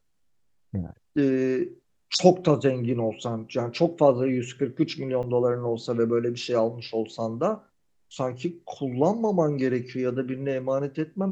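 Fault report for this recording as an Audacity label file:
5.230000	5.230000	dropout 3.5 ms

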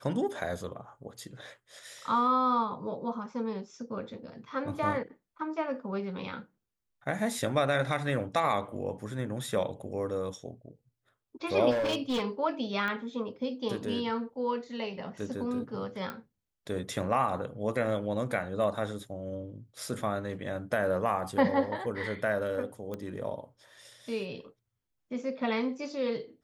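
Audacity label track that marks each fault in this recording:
11.700000	12.230000	clipped -26 dBFS
12.880000	12.880000	pop -22 dBFS
16.100000	16.100000	pop -23 dBFS
22.940000	22.940000	pop -24 dBFS

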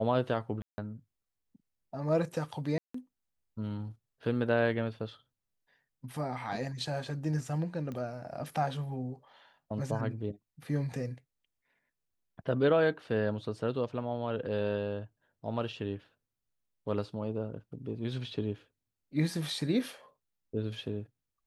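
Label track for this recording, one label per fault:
0.620000	0.780000	dropout 160 ms
2.780000	2.940000	dropout 164 ms
7.920000	7.920000	pop -28 dBFS

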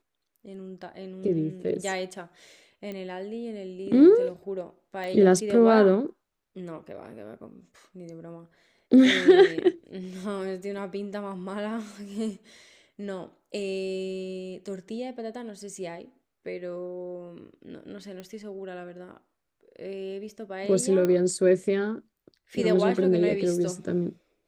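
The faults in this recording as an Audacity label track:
2.920000	2.920000	pop -25 dBFS
5.040000	5.040000	pop -24 dBFS
18.200000	18.200000	pop -26 dBFS
21.050000	21.050000	pop -14 dBFS

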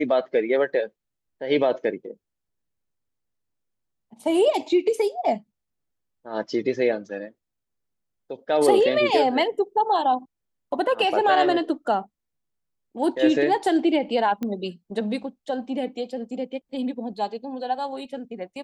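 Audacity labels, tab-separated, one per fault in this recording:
14.430000	14.430000	pop -17 dBFS

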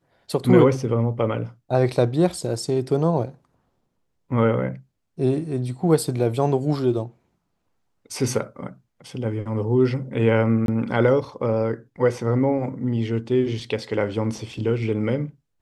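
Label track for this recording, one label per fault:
10.660000	10.680000	dropout 22 ms

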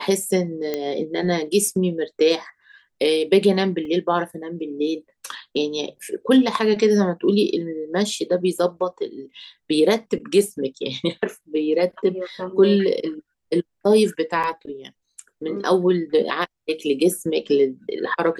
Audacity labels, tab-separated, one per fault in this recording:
0.740000	0.740000	pop -11 dBFS
3.850000	3.850000	dropout 2.5 ms
14.430000	14.440000	dropout 6.5 ms

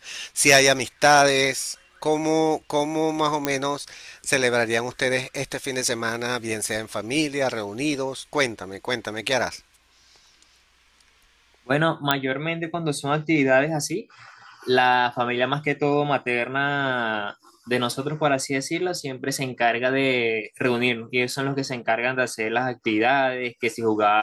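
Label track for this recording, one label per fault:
3.450000	3.450000	pop -6 dBFS
12.110000	12.110000	pop -4 dBFS

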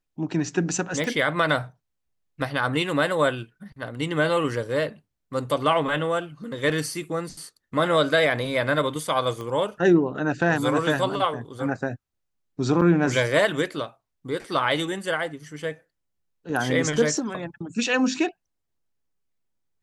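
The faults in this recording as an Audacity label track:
1.040000	1.040000	pop -17 dBFS
9.410000	9.410000	pop -22 dBFS
12.810000	12.820000	dropout 5.7 ms

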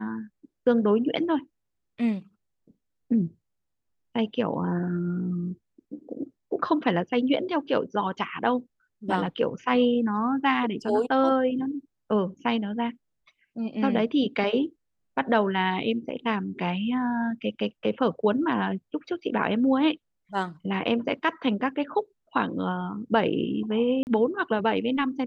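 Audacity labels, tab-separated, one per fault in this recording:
24.030000	24.070000	dropout 39 ms

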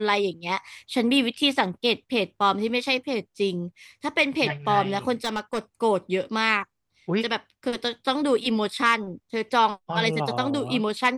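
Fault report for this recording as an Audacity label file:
5.240000	5.590000	clipped -21.5 dBFS

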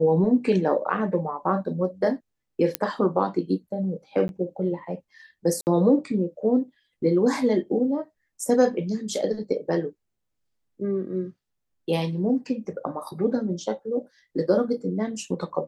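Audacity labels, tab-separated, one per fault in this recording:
2.750000	2.750000	pop -5 dBFS
4.280000	4.290000	dropout 11 ms
5.610000	5.670000	dropout 59 ms

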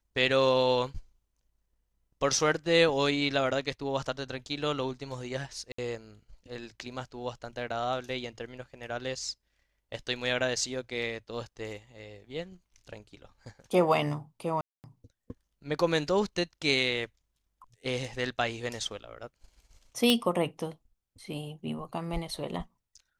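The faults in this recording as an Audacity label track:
5.720000	5.780000	dropout 64 ms
14.610000	14.840000	dropout 229 ms
20.100000	20.100000	pop -10 dBFS

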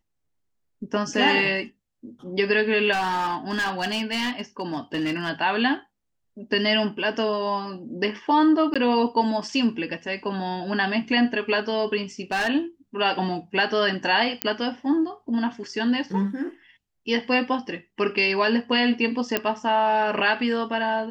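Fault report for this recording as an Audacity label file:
2.920000	5.300000	clipped -21 dBFS
8.740000	8.760000	dropout 16 ms
12.320000	12.480000	clipped -20 dBFS
14.420000	14.420000	pop -5 dBFS
19.370000	19.370000	pop -7 dBFS

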